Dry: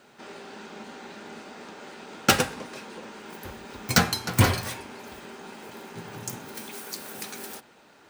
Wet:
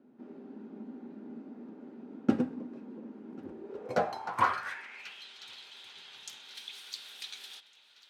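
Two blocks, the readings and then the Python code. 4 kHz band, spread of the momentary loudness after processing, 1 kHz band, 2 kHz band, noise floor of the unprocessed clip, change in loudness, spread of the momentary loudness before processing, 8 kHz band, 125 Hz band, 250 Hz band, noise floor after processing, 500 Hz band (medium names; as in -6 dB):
-12.0 dB, 18 LU, -3.0 dB, -10.0 dB, -56 dBFS, -10.5 dB, 20 LU, -20.0 dB, -18.5 dB, -3.0 dB, -61 dBFS, -5.0 dB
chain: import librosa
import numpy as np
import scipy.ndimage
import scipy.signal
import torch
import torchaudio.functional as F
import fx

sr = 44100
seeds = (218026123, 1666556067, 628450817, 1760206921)

y = fx.echo_swing(x, sr, ms=1455, ratio=3, feedback_pct=38, wet_db=-22.0)
y = fx.filter_sweep_bandpass(y, sr, from_hz=260.0, to_hz=3500.0, start_s=3.41, end_s=5.27, q=4.4)
y = F.gain(torch.from_numpy(y), 6.0).numpy()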